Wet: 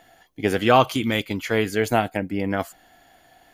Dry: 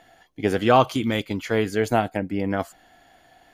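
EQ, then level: high shelf 11000 Hz +11 dB; dynamic EQ 2400 Hz, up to +4 dB, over -39 dBFS, Q 1.1; 0.0 dB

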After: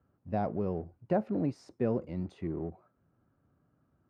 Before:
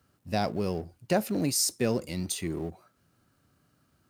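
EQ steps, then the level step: LPF 1100 Hz 12 dB/oct; -2.5 dB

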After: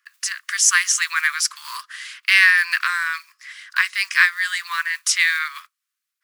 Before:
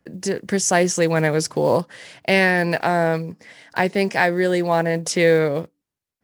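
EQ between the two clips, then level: steep high-pass 1100 Hz 96 dB/oct; +6.5 dB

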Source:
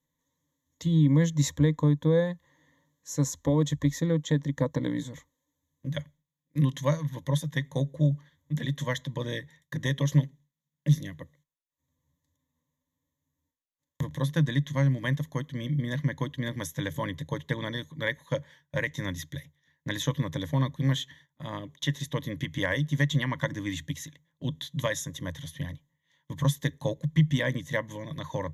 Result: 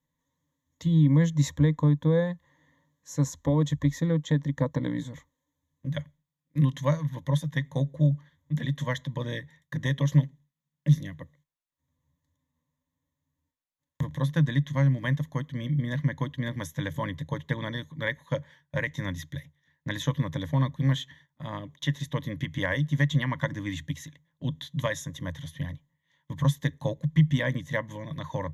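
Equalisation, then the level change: bell 390 Hz -5.5 dB 0.81 oct; high shelf 3300 Hz -8 dB; +2.0 dB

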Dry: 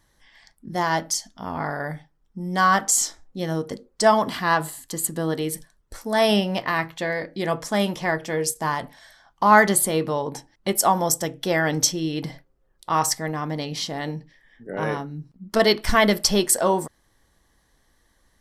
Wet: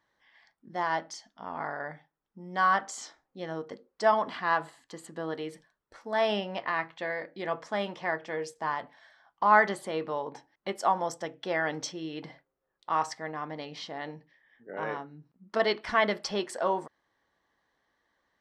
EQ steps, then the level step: HPF 950 Hz 6 dB/oct; tape spacing loss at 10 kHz 30 dB; 0.0 dB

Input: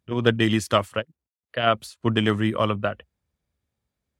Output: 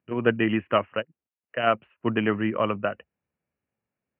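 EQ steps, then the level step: HPF 150 Hz 12 dB/oct; Chebyshev low-pass 2900 Hz, order 8; -1.0 dB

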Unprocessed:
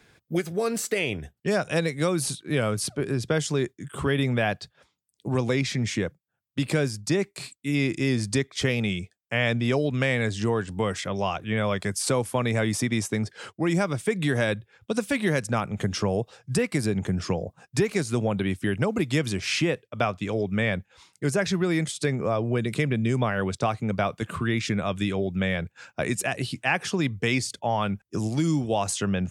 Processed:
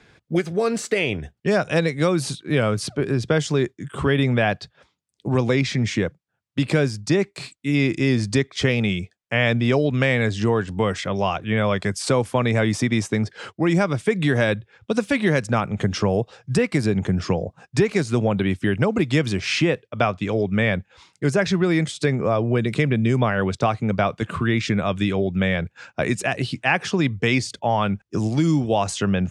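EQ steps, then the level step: air absorption 66 m; +5.0 dB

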